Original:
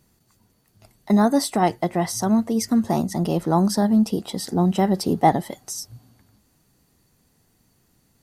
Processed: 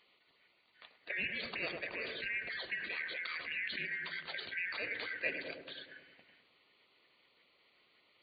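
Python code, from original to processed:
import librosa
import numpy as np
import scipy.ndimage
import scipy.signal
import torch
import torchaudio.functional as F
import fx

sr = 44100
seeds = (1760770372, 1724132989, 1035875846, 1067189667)

p1 = fx.band_shuffle(x, sr, order='2143')
p2 = fx.highpass(p1, sr, hz=290.0, slope=6)
p3 = fx.spec_gate(p2, sr, threshold_db=-15, keep='weak')
p4 = fx.brickwall_lowpass(p3, sr, high_hz=4700.0)
p5 = fx.echo_filtered(p4, sr, ms=104, feedback_pct=72, hz=970.0, wet_db=-10.5)
p6 = fx.over_compress(p5, sr, threshold_db=-44.0, ratio=-1.0)
p7 = p5 + (p6 * 10.0 ** (0.5 / 20.0))
y = p7 * 10.0 ** (-7.0 / 20.0)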